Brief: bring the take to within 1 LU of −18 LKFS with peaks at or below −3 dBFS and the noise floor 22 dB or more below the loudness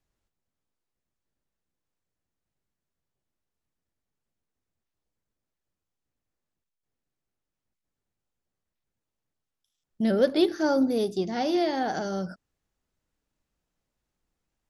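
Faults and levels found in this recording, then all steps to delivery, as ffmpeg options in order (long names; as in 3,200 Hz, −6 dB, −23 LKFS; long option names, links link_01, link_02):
integrated loudness −26.0 LKFS; sample peak −10.0 dBFS; target loudness −18.0 LKFS
→ -af "volume=8dB,alimiter=limit=-3dB:level=0:latency=1"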